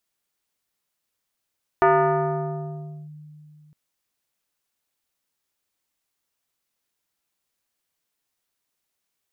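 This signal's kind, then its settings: FM tone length 1.91 s, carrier 151 Hz, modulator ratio 3.55, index 2.3, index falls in 1.27 s linear, decay 2.97 s, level -12 dB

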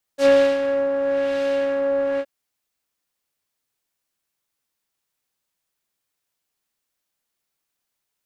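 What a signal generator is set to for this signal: synth patch with filter wobble C#5, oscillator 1 triangle, oscillator 2 saw, oscillator 2 level -16 dB, sub -15 dB, noise -12 dB, filter lowpass, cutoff 2100 Hz, Q 0.99, filter envelope 2 oct, filter decay 0.10 s, filter sustain 0%, attack 78 ms, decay 0.32 s, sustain -9 dB, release 0.06 s, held 2.01 s, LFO 1 Hz, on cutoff 0.7 oct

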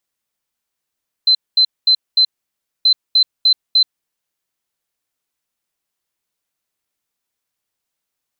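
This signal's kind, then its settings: beep pattern sine 4070 Hz, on 0.08 s, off 0.22 s, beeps 4, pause 0.60 s, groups 2, -8 dBFS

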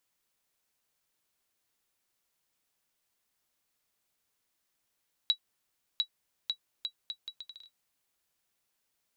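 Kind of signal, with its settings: bouncing ball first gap 0.70 s, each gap 0.71, 3900 Hz, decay 84 ms -15.5 dBFS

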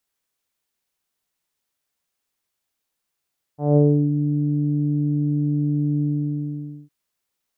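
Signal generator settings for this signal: synth note saw D3 24 dB/oct, low-pass 280 Hz, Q 2.2, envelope 1.5 oct, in 0.53 s, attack 0.182 s, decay 0.32 s, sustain -8 dB, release 0.87 s, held 2.44 s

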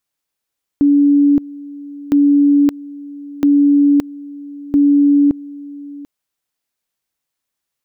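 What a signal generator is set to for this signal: two-level tone 286 Hz -7.5 dBFS, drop 20.5 dB, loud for 0.57 s, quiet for 0.74 s, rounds 4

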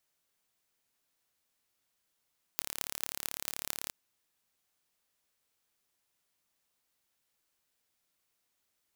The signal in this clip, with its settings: pulse train 35.9/s, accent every 8, -4 dBFS 1.33 s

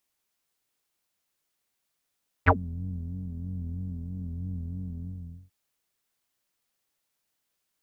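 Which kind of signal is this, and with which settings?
synth patch with vibrato F2, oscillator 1 square, detune 24 cents, filter lowpass, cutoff 160 Hz, Q 10, filter envelope 4 oct, filter decay 0.10 s, filter sustain 5%, attack 26 ms, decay 0.05 s, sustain -22 dB, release 0.53 s, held 2.51 s, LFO 3.1 Hz, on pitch 97 cents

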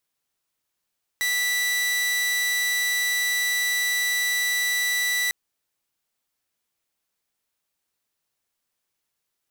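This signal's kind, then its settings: tone saw 1970 Hz -19 dBFS 4.10 s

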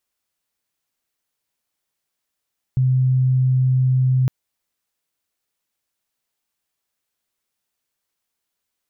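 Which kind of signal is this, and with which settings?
tone sine 129 Hz -13.5 dBFS 1.51 s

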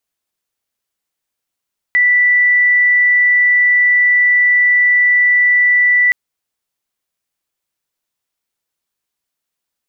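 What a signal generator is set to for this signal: tone sine 1970 Hz -8 dBFS 4.17 s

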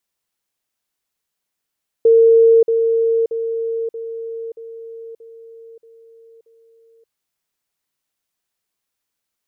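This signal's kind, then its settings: level ladder 456 Hz -7 dBFS, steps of -6 dB, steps 8, 0.58 s 0.05 s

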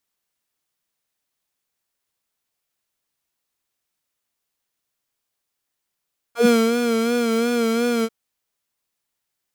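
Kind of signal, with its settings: synth patch with vibrato A#4, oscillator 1 square, oscillator 2 saw, interval 0 st, sub -3 dB, filter highpass, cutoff 110 Hz, Q 3.3, filter envelope 3.5 oct, filter decay 0.11 s, filter sustain 15%, attack 0.124 s, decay 0.23 s, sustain -6 dB, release 0.05 s, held 1.69 s, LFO 2.8 Hz, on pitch 61 cents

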